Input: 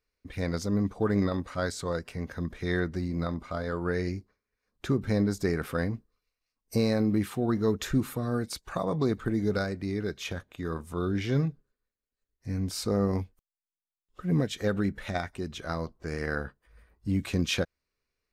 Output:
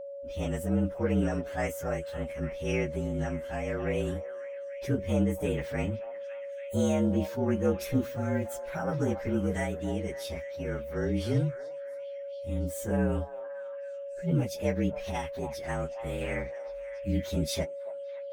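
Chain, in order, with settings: inharmonic rescaling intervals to 117%; whine 560 Hz -38 dBFS; delay with a stepping band-pass 0.281 s, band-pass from 830 Hz, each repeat 0.7 oct, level -7 dB

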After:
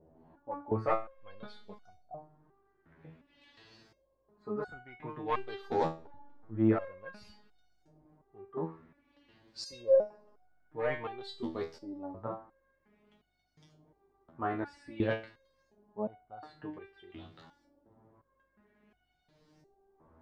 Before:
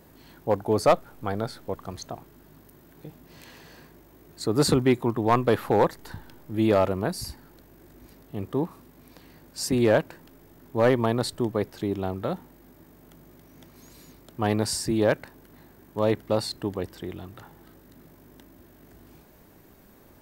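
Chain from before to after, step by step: LFO low-pass saw up 0.51 Hz 600–5900 Hz; two-slope reverb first 0.63 s, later 2.1 s, DRR 19 dB; stepped resonator 2.8 Hz 81–740 Hz; gain -1.5 dB

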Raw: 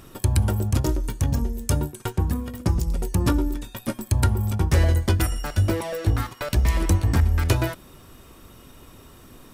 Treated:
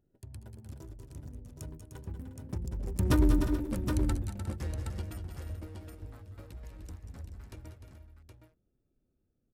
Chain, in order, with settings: Wiener smoothing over 41 samples; Doppler pass-by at 3.35, 17 m/s, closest 2.2 m; tapped delay 0.187/0.197/0.301/0.357/0.431/0.769 s -12.5/-11/-9.5/-13.5/-15.5/-6.5 dB; gain +1.5 dB

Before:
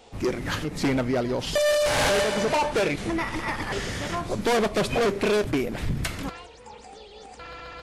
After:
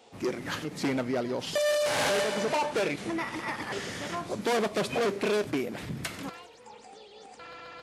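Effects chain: HPF 150 Hz 12 dB/oct; thin delay 97 ms, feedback 54%, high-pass 4000 Hz, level -17 dB; gain -4.5 dB

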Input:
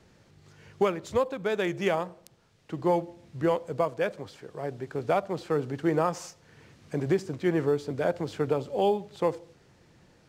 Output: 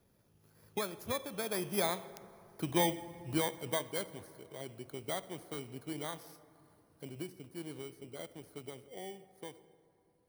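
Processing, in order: FFT order left unsorted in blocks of 16 samples; Doppler pass-by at 2.51, 18 m/s, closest 15 m; dynamic EQ 480 Hz, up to -6 dB, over -46 dBFS, Q 2.4; plate-style reverb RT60 3 s, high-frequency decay 0.4×, DRR 14 dB; harmonic-percussive split percussive +3 dB; gain -3 dB

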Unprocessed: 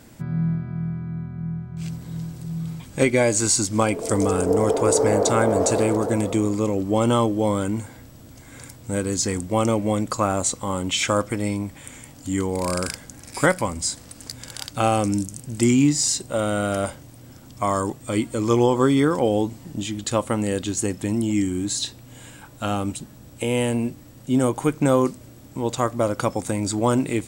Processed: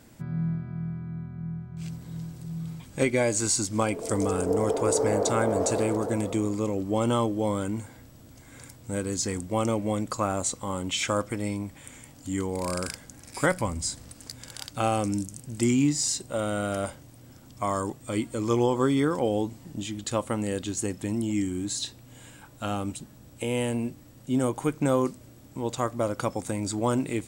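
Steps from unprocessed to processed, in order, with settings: 13.51–14.13 low shelf 150 Hz +8 dB; gain -5.5 dB

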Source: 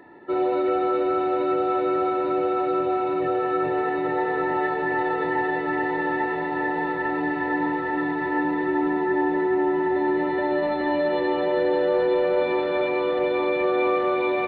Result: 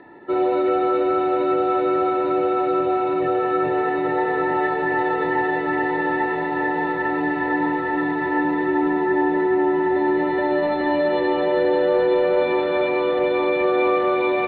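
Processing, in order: steep low-pass 4500 Hz 72 dB/oct; gain +3 dB

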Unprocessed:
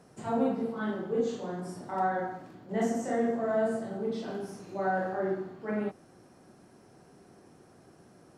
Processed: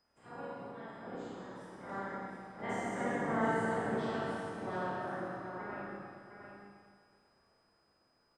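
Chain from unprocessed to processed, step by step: spectral limiter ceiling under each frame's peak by 21 dB; Doppler pass-by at 3.66, 16 m/s, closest 13 m; LPF 8900 Hz 24 dB/oct; bell 5900 Hz -13.5 dB 1.8 oct; whine 5000 Hz -70 dBFS; on a send: echo 0.712 s -8 dB; on the sum: Schroeder reverb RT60 1.9 s, combs from 27 ms, DRR -3 dB; gain -6.5 dB

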